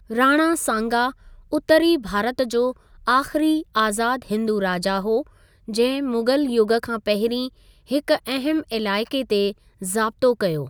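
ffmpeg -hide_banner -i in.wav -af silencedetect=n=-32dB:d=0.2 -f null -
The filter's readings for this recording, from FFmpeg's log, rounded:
silence_start: 1.11
silence_end: 1.53 | silence_duration: 0.42
silence_start: 2.72
silence_end: 3.07 | silence_duration: 0.35
silence_start: 5.22
silence_end: 5.68 | silence_duration: 0.46
silence_start: 7.48
silence_end: 7.91 | silence_duration: 0.43
silence_start: 9.52
silence_end: 9.82 | silence_duration: 0.30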